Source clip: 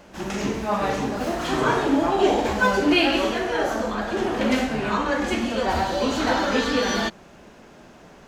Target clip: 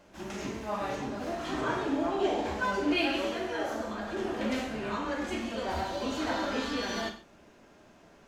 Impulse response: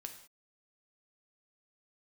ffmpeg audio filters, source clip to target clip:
-filter_complex "[0:a]asettb=1/sr,asplit=3[a][b][c];[a]atrim=end=0.954[d];[b]atrim=start=0.95:end=2.97,asetpts=PTS-STARTPTS,afade=t=in:d=0.004:c=qsin,afade=t=out:st=2.016:d=0.004:c=qsin,highshelf=f=10k:g=-8.5[e];[c]atrim=start=2.966[f];[d][e]acrossfade=d=0.004:c1=hsin:c2=qsin[g];[g][f]acrossfade=d=0.004:c1=qsin:c2=hsin[h];[1:a]atrim=start_sample=2205,asetrate=61740,aresample=44100[i];[h][i]afir=irnorm=-1:irlink=0,volume=-2.5dB"

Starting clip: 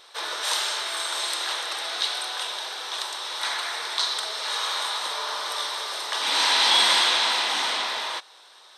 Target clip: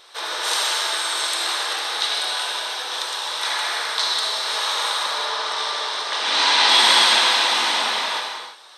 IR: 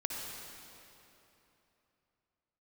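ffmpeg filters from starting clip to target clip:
-filter_complex "[0:a]asettb=1/sr,asplit=3[a][b][c];[a]atrim=end=5.034[d];[b]atrim=start=5.03:end=6.69,asetpts=PTS-STARTPTS,afade=t=in:d=0.004:c=qsin,afade=t=out:st=1.656:d=0.004:c=qsin,lowpass=6.6k[e];[c]atrim=start=6.686[f];[d][e]acrossfade=d=0.004:c1=hsin:c2=qsin[g];[g][f]acrossfade=d=0.004:c1=qsin:c2=hsin[h];[1:a]atrim=start_sample=2205,afade=t=out:st=0.41:d=0.01,atrim=end_sample=18522[i];[h][i]afir=irnorm=-1:irlink=0,volume=3dB"

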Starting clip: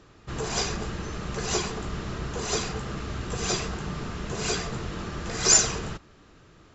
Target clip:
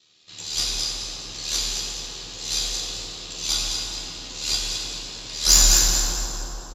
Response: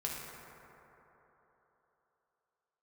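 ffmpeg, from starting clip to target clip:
-filter_complex "[0:a]equalizer=f=4k:t=o:w=0.8:g=11,asplit=6[a][b][c][d][e][f];[b]adelay=215,afreqshift=63,volume=-5dB[g];[c]adelay=430,afreqshift=126,volume=-12.5dB[h];[d]adelay=645,afreqshift=189,volume=-20.1dB[i];[e]adelay=860,afreqshift=252,volume=-27.6dB[j];[f]adelay=1075,afreqshift=315,volume=-35.1dB[k];[a][g][h][i][j][k]amix=inputs=6:normalize=0,aexciter=amount=7.2:drive=3.3:freq=2.2k,highpass=f=170:p=1,aeval=exprs='5.62*(cos(1*acos(clip(val(0)/5.62,-1,1)))-cos(1*PI/2))+0.562*(cos(6*acos(clip(val(0)/5.62,-1,1)))-cos(6*PI/2))':c=same,flanger=delay=4.5:depth=5.8:regen=44:speed=0.61:shape=triangular,aeval=exprs='val(0)*sin(2*PI*38*n/s)':c=same[l];[1:a]atrim=start_sample=2205,asetrate=31311,aresample=44100[m];[l][m]afir=irnorm=-1:irlink=0,volume=-12dB"

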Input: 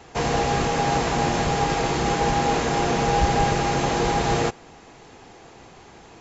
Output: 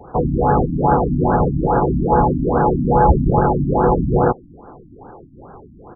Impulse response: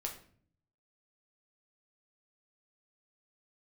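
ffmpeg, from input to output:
-af "asetrate=45938,aresample=44100,afftfilt=real='re*lt(b*sr/1024,300*pow(1700/300,0.5+0.5*sin(2*PI*2.4*pts/sr)))':imag='im*lt(b*sr/1024,300*pow(1700/300,0.5+0.5*sin(2*PI*2.4*pts/sr)))':win_size=1024:overlap=0.75,volume=8.5dB"

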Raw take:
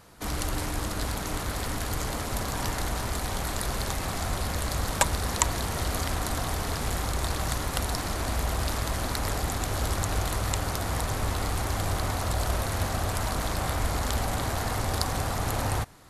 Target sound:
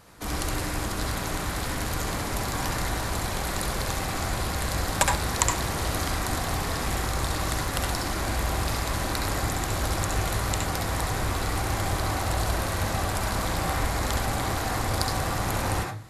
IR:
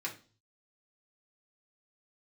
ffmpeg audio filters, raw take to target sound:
-filter_complex "[0:a]asplit=2[a][b];[1:a]atrim=start_sample=2205,adelay=66[c];[b][c]afir=irnorm=-1:irlink=0,volume=-2.5dB[d];[a][d]amix=inputs=2:normalize=0"

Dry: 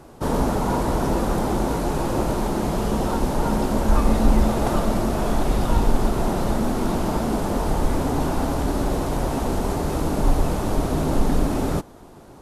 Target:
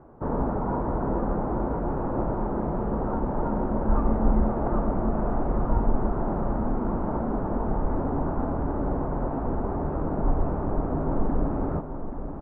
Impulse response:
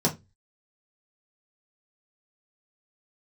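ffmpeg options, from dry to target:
-af "lowpass=f=1.4k:w=0.5412,lowpass=f=1.4k:w=1.3066,aecho=1:1:830|1660|2490|3320|4150|4980|5810:0.316|0.18|0.103|0.0586|0.0334|0.019|0.0108,volume=-5dB"

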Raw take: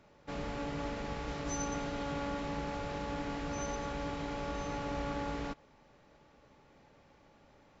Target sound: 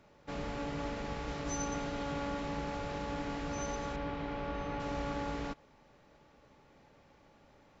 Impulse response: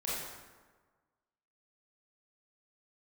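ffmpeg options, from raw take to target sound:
-filter_complex "[0:a]asettb=1/sr,asplit=3[a][b][c];[a]atrim=end=3.964[d];[b]atrim=start=3.96:end=4.8,asetpts=PTS-STARTPTS,afade=t=in:d=0.004:c=qsin,afade=t=out:st=0.836:d=0.004:c=qsin,lowpass=3.3k[e];[c]atrim=start=4.796[f];[d][e]acrossfade=d=0.004:c1=hsin:c2=qsin[g];[g][f]acrossfade=d=0.004:c1=qsin:c2=hsin"

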